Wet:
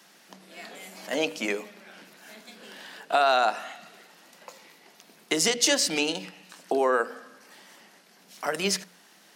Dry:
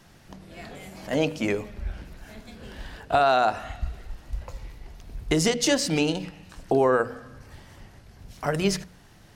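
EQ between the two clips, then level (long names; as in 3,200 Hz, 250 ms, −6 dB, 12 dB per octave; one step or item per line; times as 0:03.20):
elliptic high-pass filter 180 Hz, stop band 50 dB
spectral tilt +3 dB per octave
high-shelf EQ 5,700 Hz −6 dB
0.0 dB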